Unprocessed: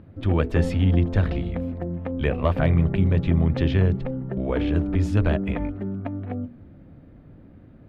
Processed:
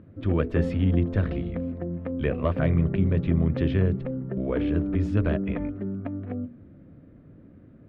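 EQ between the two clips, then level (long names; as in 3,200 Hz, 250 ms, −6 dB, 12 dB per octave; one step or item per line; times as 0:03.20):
low-pass filter 1,600 Hz 6 dB per octave
low-shelf EQ 65 Hz −11.5 dB
parametric band 820 Hz −8.5 dB 0.51 octaves
0.0 dB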